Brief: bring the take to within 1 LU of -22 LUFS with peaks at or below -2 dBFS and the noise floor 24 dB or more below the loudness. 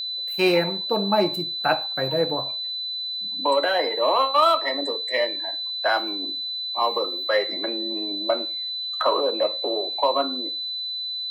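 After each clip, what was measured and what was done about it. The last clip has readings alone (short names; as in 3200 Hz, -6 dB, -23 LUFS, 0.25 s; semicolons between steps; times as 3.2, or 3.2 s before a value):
ticks 28/s; steady tone 4000 Hz; tone level -27 dBFS; loudness -23.0 LUFS; peak -7.5 dBFS; loudness target -22.0 LUFS
-> de-click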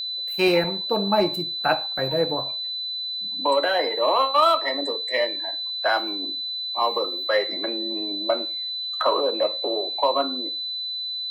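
ticks 0.35/s; steady tone 4000 Hz; tone level -27 dBFS
-> notch 4000 Hz, Q 30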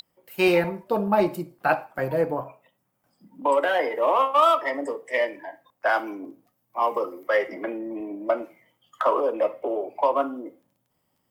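steady tone none; loudness -24.5 LUFS; peak -8.0 dBFS; loudness target -22.0 LUFS
-> gain +2.5 dB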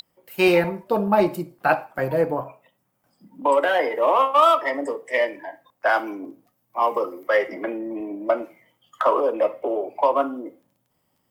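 loudness -22.0 LUFS; peak -5.5 dBFS; noise floor -71 dBFS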